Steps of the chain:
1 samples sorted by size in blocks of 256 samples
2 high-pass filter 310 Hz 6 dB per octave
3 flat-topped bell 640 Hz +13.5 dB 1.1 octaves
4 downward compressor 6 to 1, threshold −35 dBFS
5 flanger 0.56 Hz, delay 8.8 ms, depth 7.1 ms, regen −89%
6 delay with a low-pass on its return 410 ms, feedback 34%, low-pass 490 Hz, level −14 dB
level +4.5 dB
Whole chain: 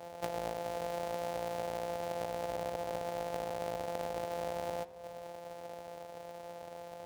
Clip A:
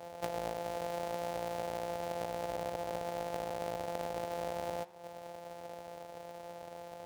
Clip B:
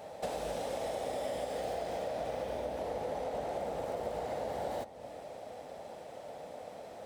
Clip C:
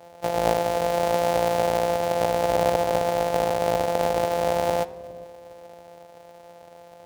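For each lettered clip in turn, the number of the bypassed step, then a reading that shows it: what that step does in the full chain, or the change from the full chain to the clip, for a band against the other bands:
6, echo-to-direct ratio −24.5 dB to none audible
1, change in crest factor −6.0 dB
4, average gain reduction 10.0 dB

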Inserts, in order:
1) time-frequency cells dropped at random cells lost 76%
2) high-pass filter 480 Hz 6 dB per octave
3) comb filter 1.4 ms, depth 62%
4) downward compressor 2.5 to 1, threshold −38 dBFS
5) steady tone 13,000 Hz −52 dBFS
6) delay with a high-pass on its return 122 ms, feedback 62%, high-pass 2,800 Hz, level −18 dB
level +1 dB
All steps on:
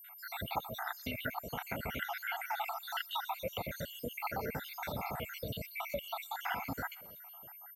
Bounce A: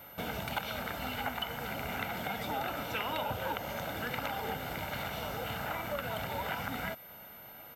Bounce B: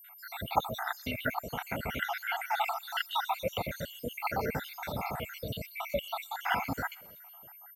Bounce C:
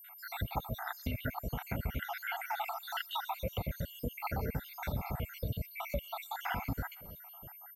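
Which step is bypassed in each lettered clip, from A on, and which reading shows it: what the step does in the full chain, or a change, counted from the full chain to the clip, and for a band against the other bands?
1, change in momentary loudness spread −1 LU
4, average gain reduction 3.5 dB
2, 125 Hz band +9.0 dB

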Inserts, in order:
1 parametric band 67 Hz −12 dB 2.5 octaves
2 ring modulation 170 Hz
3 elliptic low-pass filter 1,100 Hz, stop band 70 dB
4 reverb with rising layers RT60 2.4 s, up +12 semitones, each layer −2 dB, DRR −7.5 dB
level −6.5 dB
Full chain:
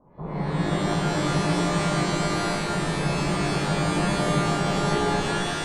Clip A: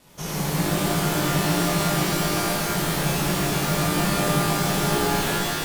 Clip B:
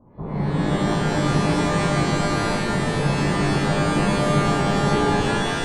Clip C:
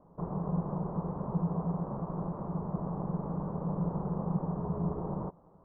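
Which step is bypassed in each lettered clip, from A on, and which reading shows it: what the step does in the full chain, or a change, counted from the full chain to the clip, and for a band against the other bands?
3, 8 kHz band +7.0 dB
1, change in integrated loudness +3.5 LU
4, 1 kHz band −6.0 dB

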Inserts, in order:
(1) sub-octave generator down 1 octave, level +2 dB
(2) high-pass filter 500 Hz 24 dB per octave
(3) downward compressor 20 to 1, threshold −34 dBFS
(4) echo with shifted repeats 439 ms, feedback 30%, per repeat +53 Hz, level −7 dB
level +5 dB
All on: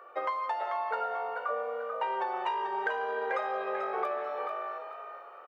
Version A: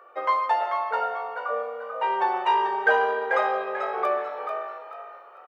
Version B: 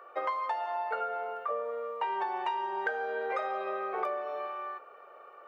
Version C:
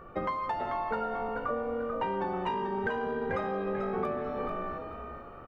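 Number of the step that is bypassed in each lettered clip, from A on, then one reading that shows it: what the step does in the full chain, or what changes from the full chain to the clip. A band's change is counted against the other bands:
3, average gain reduction 4.0 dB
4, change in momentary loudness spread +2 LU
2, 500 Hz band +3.5 dB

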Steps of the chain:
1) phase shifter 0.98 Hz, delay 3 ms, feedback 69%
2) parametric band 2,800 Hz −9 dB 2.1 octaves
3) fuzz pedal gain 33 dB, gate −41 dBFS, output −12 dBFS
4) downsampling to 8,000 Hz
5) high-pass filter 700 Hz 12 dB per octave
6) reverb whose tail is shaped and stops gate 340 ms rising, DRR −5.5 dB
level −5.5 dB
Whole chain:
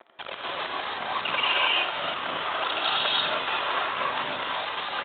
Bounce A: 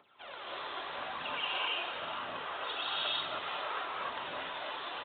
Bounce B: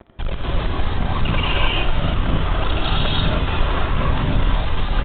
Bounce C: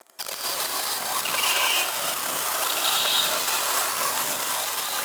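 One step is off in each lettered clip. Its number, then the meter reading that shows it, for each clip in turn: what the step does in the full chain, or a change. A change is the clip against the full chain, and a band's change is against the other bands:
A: 3, change in integrated loudness −10.0 LU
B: 5, 125 Hz band +30.0 dB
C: 4, 4 kHz band +2.5 dB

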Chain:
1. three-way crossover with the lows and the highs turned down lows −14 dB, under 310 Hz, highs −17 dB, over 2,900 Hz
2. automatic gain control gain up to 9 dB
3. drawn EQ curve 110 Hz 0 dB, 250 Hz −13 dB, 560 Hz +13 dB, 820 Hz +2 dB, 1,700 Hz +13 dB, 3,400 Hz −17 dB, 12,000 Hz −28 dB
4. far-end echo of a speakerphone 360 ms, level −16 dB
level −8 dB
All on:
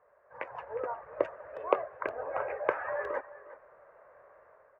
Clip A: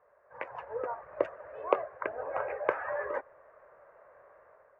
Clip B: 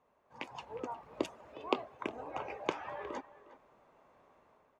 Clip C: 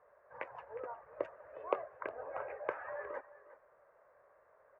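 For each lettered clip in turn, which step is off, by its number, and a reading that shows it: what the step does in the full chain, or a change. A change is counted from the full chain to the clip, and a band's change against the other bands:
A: 4, change in momentary loudness spread −5 LU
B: 3, 250 Hz band +11.5 dB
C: 2, change in integrated loudness −8.0 LU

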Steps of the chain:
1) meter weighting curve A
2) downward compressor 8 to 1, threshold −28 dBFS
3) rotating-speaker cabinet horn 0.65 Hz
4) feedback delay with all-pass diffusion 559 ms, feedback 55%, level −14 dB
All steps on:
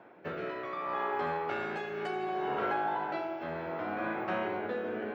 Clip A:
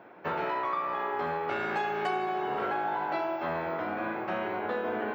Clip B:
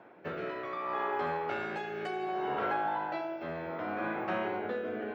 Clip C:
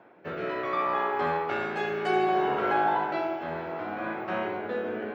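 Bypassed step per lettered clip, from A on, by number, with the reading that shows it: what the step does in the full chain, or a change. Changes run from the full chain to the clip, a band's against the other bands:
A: 3, 250 Hz band −1.5 dB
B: 4, echo-to-direct ratio −12.5 dB to none audible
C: 2, average gain reduction 4.5 dB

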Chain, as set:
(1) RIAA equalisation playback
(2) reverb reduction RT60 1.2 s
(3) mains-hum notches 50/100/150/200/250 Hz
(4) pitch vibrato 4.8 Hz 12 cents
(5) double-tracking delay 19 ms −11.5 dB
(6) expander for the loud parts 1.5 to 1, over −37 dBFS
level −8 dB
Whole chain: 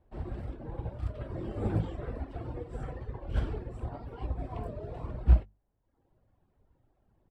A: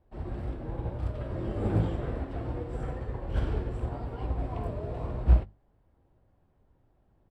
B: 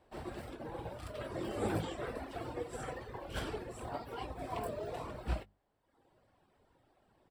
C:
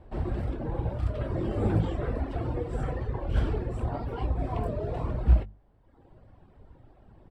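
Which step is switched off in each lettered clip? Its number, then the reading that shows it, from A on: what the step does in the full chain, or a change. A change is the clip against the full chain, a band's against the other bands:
2, change in momentary loudness spread −3 LU
1, 125 Hz band −14.0 dB
6, 125 Hz band −2.5 dB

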